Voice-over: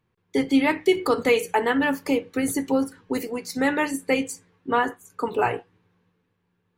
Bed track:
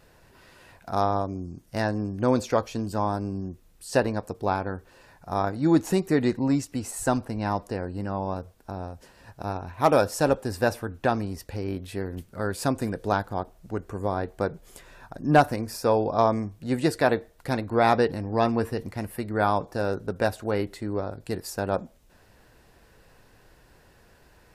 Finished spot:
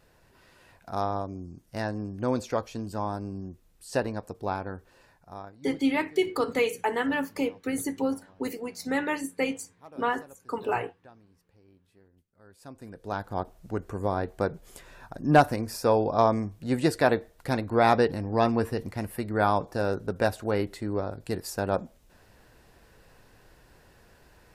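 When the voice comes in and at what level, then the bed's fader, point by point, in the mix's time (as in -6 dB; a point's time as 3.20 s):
5.30 s, -5.5 dB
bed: 5.04 s -5 dB
5.84 s -29 dB
12.38 s -29 dB
13.40 s -0.5 dB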